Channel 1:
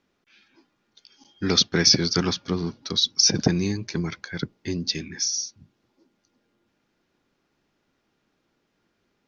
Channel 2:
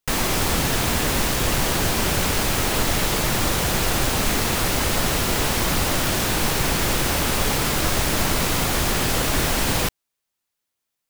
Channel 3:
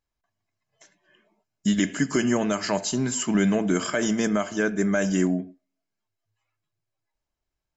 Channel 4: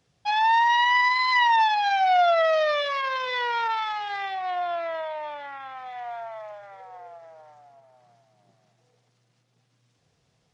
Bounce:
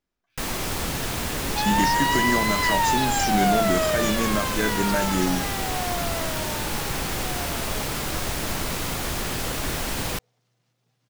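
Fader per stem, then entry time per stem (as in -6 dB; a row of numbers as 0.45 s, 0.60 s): -15.5 dB, -6.5 dB, -2.0 dB, -3.0 dB; 0.00 s, 0.30 s, 0.00 s, 1.30 s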